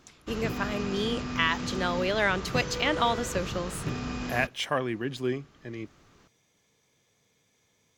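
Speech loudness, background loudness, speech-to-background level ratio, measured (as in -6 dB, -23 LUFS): -29.5 LUFS, -35.0 LUFS, 5.5 dB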